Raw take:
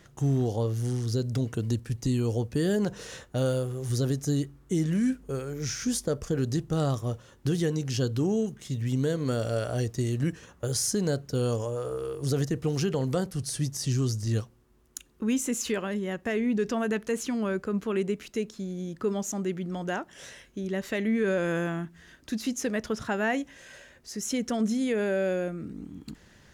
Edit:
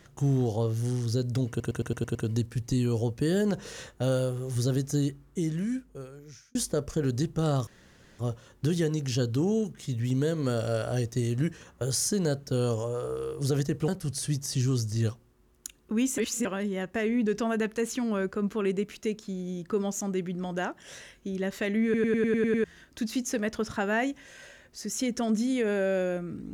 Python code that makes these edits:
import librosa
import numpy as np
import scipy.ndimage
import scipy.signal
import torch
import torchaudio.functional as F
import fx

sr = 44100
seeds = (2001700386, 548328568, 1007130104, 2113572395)

y = fx.edit(x, sr, fx.stutter(start_s=1.49, slice_s=0.11, count=7),
    fx.fade_out_span(start_s=4.34, length_s=1.55),
    fx.insert_room_tone(at_s=7.01, length_s=0.52),
    fx.cut(start_s=12.7, length_s=0.49),
    fx.reverse_span(start_s=15.49, length_s=0.27),
    fx.stutter_over(start_s=21.15, slice_s=0.1, count=8), tone=tone)